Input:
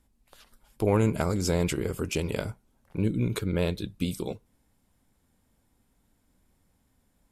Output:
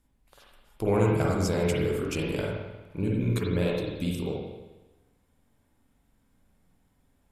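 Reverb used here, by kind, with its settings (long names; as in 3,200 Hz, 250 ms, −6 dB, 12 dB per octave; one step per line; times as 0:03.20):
spring reverb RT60 1.1 s, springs 44/51 ms, chirp 45 ms, DRR −3 dB
level −3.5 dB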